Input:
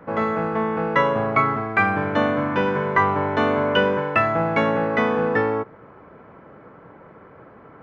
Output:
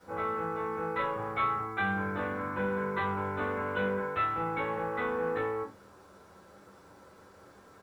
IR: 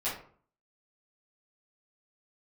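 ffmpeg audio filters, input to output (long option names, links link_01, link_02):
-filter_complex "[0:a]lowpass=1800,aresample=8000,asoftclip=type=tanh:threshold=-15.5dB,aresample=44100,acrusher=bits=8:mix=0:aa=0.000001[link_01];[1:a]atrim=start_sample=2205,asetrate=88200,aresample=44100[link_02];[link_01][link_02]afir=irnorm=-1:irlink=0,volume=-8.5dB"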